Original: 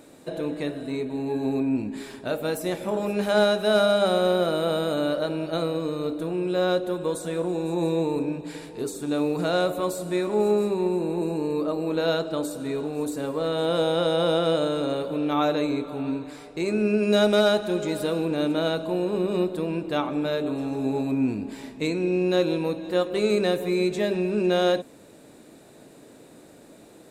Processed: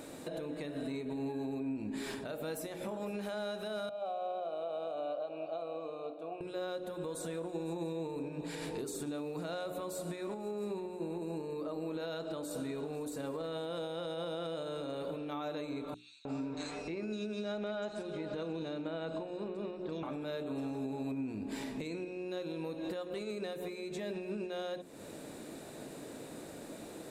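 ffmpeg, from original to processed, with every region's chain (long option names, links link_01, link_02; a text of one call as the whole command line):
ffmpeg -i in.wav -filter_complex "[0:a]asettb=1/sr,asplit=3[link_01][link_02][link_03];[link_01]atrim=end=3.894[link_04];[link_02]atrim=start=3.89:end=6.41,asetpts=PTS-STARTPTS,afade=type=in:duration=0.004:curve=qsin,afade=type=out:start_time=2.516:duration=0.004:curve=qsin,asplit=3[link_05][link_06][link_07];[link_05]bandpass=frequency=730:width_type=q:width=8,volume=0dB[link_08];[link_06]bandpass=frequency=1090:width_type=q:width=8,volume=-6dB[link_09];[link_07]bandpass=frequency=2440:width_type=q:width=8,volume=-9dB[link_10];[link_08][link_09][link_10]amix=inputs=3:normalize=0,equalizer=frequency=1500:width_type=o:width=1.4:gain=-5.5[link_11];[link_03]atrim=start=6.406[link_12];[link_04][link_11]acrossfade=duration=0.004:curve1=hsin:curve2=qsin[link_13];[link_13][link_12]acrossfade=duration=0.004:curve1=qsin:curve2=hsin,asettb=1/sr,asplit=3[link_14][link_15][link_16];[link_14]atrim=end=15.944[link_17];[link_15]atrim=start=15.94:end=20.03,asetpts=PTS-STARTPTS,afade=type=in:duration=0.004:curve=qsin,afade=type=out:start_time=4.086:duration=0.004:curve=qsin,lowpass=frequency=7100:width=0.5412,lowpass=frequency=7100:width=1.3066,acrossover=split=3800[link_18][link_19];[link_18]adelay=310[link_20];[link_20][link_19]amix=inputs=2:normalize=0,atrim=end_sample=180369[link_21];[link_16]atrim=start=20.026[link_22];[link_17][link_21]acrossfade=duration=0.004:curve1=hsin:curve2=qsin[link_23];[link_23][link_22]acrossfade=duration=0.004:curve1=qsin:curve2=hsin,acompressor=threshold=-35dB:ratio=6,alimiter=level_in=9.5dB:limit=-24dB:level=0:latency=1:release=119,volume=-9.5dB,bandreject=frequency=60:width_type=h:width=6,bandreject=frequency=120:width_type=h:width=6,bandreject=frequency=180:width_type=h:width=6,bandreject=frequency=240:width_type=h:width=6,bandreject=frequency=300:width_type=h:width=6,bandreject=frequency=360:width_type=h:width=6,bandreject=frequency=420:width_type=h:width=6,volume=3dB" out.wav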